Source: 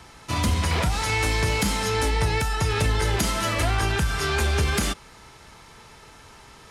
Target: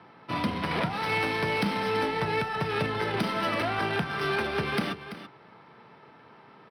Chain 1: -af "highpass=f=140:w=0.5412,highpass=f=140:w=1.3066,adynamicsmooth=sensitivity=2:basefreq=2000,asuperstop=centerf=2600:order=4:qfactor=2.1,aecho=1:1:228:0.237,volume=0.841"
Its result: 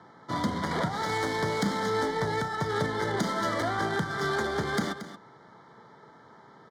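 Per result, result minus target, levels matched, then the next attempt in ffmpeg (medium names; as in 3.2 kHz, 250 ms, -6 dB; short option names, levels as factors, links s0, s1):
8 kHz band +8.5 dB; echo 107 ms early
-af "highpass=f=140:w=0.5412,highpass=f=140:w=1.3066,adynamicsmooth=sensitivity=2:basefreq=2000,asuperstop=centerf=7000:order=4:qfactor=2.1,aecho=1:1:228:0.237,volume=0.841"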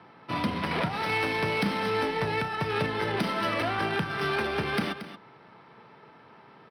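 echo 107 ms early
-af "highpass=f=140:w=0.5412,highpass=f=140:w=1.3066,adynamicsmooth=sensitivity=2:basefreq=2000,asuperstop=centerf=7000:order=4:qfactor=2.1,aecho=1:1:335:0.237,volume=0.841"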